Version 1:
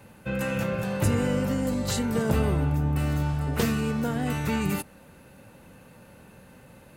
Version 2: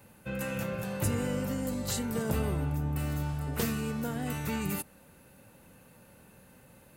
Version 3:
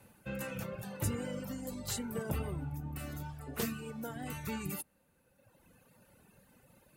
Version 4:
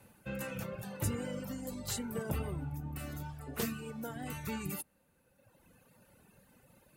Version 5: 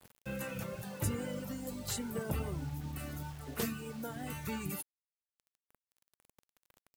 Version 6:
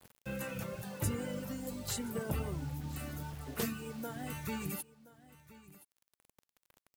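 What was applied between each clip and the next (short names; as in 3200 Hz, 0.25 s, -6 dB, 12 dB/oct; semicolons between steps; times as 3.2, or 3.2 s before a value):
high shelf 8500 Hz +10.5 dB; gain -6.5 dB
reverb removal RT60 1.7 s; wow and flutter 22 cents; gain -3.5 dB
nothing audible
bit-crush 9-bit
echo 1.023 s -18.5 dB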